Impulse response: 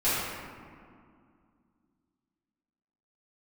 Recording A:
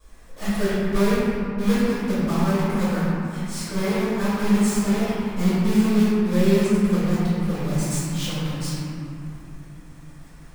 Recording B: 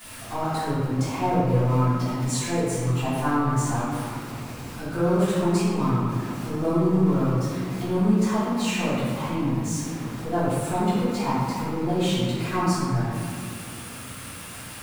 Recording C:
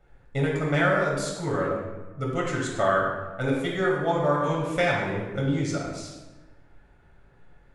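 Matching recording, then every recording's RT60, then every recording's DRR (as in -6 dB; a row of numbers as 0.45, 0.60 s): B; 3.0, 2.2, 1.2 s; -17.5, -14.5, -3.5 dB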